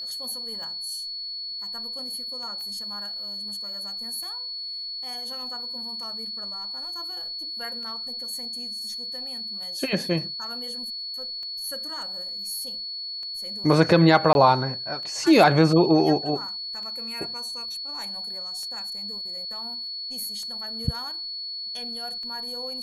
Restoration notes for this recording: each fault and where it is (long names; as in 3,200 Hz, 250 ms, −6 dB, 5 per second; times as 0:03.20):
scratch tick 33 1/3 rpm
whistle 4,400 Hz −31 dBFS
0:02.61: click −27 dBFS
0:14.33–0:14.35: drop-out 21 ms